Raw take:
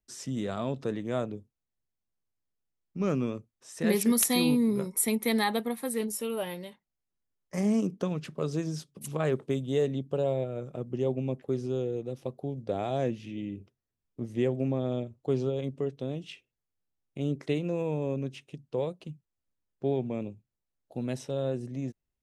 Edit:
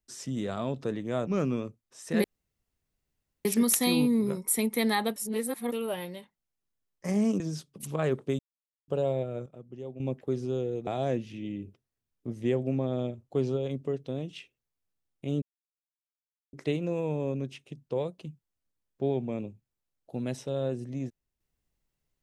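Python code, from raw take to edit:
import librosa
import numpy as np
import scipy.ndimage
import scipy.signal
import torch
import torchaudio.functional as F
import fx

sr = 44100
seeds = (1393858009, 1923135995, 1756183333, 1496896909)

y = fx.edit(x, sr, fx.cut(start_s=1.27, length_s=1.7),
    fx.insert_room_tone(at_s=3.94, length_s=1.21),
    fx.reverse_span(start_s=5.65, length_s=0.56),
    fx.cut(start_s=7.89, length_s=0.72),
    fx.silence(start_s=9.6, length_s=0.49),
    fx.clip_gain(start_s=10.67, length_s=0.54, db=-11.5),
    fx.cut(start_s=12.08, length_s=0.72),
    fx.insert_silence(at_s=17.35, length_s=1.11), tone=tone)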